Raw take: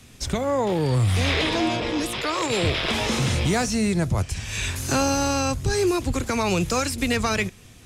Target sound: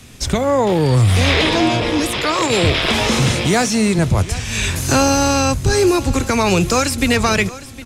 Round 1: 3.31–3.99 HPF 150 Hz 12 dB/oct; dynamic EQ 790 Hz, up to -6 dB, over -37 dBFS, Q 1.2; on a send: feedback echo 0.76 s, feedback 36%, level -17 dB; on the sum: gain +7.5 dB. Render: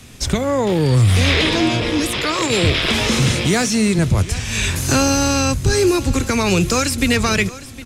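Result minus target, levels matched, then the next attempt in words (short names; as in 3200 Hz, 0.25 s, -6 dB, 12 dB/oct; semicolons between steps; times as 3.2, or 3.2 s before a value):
1000 Hz band -3.5 dB
3.31–3.99 HPF 150 Hz 12 dB/oct; on a send: feedback echo 0.76 s, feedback 36%, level -17 dB; on the sum: gain +7.5 dB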